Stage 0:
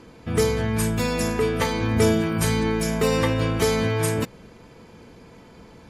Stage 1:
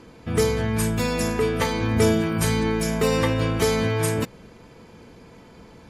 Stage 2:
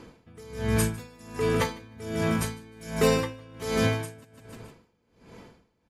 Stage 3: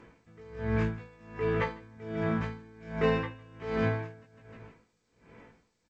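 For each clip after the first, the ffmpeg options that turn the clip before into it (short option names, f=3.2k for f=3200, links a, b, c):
-af anull
-filter_complex "[0:a]asplit=2[a][b];[b]aecho=0:1:153|306|459|612:0.355|0.142|0.0568|0.0227[c];[a][c]amix=inputs=2:normalize=0,aeval=exprs='val(0)*pow(10,-27*(0.5-0.5*cos(2*PI*1.3*n/s))/20)':c=same"
-filter_complex "[0:a]lowpass=f=2.1k:t=q:w=1.8,asplit=2[a][b];[b]adelay=18,volume=-3dB[c];[a][c]amix=inputs=2:normalize=0,volume=-8dB" -ar 16000 -c:a g722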